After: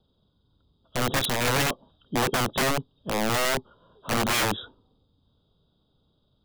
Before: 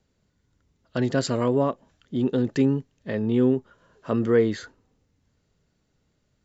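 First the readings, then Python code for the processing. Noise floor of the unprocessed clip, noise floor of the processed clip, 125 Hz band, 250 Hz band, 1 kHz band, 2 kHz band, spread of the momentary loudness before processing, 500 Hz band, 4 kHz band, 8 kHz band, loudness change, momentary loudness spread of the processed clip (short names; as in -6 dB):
-71 dBFS, -70 dBFS, -4.0 dB, -8.5 dB, +7.5 dB, +10.0 dB, 11 LU, -5.5 dB, +12.0 dB, n/a, -1.5 dB, 9 LU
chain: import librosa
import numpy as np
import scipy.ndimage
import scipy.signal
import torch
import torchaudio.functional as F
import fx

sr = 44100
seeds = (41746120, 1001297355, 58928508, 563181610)

y = fx.freq_compress(x, sr, knee_hz=3100.0, ratio=4.0)
y = scipy.signal.sosfilt(scipy.signal.cheby1(2, 1.0, [1200.0, 3500.0], 'bandstop', fs=sr, output='sos'), y)
y = (np.mod(10.0 ** (21.0 / 20.0) * y + 1.0, 2.0) - 1.0) / 10.0 ** (21.0 / 20.0)
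y = F.gain(torch.from_numpy(y), 2.5).numpy()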